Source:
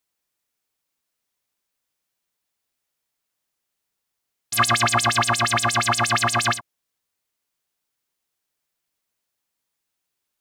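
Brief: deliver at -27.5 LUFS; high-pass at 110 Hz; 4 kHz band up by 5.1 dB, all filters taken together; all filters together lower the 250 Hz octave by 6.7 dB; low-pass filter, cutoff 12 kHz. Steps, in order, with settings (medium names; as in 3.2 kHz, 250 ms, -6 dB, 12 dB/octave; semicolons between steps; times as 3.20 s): high-pass 110 Hz; low-pass 12 kHz; peaking EQ 250 Hz -8 dB; peaking EQ 4 kHz +6.5 dB; trim -9.5 dB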